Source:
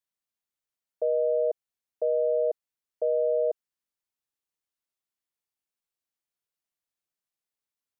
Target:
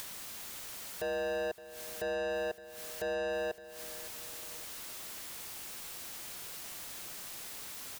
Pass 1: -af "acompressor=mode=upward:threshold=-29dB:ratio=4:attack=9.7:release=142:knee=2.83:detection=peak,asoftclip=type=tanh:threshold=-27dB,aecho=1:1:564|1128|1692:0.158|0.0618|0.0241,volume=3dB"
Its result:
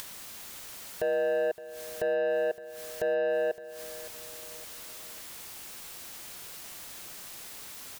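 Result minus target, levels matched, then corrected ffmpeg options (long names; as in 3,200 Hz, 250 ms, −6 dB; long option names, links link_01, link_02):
soft clipping: distortion −7 dB
-af "acompressor=mode=upward:threshold=-29dB:ratio=4:attack=9.7:release=142:knee=2.83:detection=peak,asoftclip=type=tanh:threshold=-35.5dB,aecho=1:1:564|1128|1692:0.158|0.0618|0.0241,volume=3dB"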